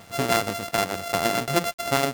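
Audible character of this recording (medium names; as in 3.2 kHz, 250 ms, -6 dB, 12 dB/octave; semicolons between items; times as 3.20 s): a buzz of ramps at a fixed pitch in blocks of 64 samples; tremolo saw down 6.4 Hz, depth 45%; a quantiser's noise floor 8-bit, dither none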